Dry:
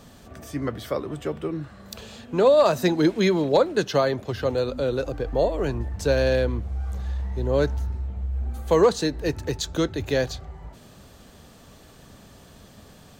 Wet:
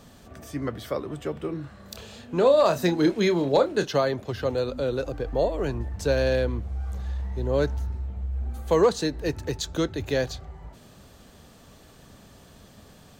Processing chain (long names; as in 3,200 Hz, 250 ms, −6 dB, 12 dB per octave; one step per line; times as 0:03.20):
0:01.33–0:03.87: double-tracking delay 29 ms −9.5 dB
level −2 dB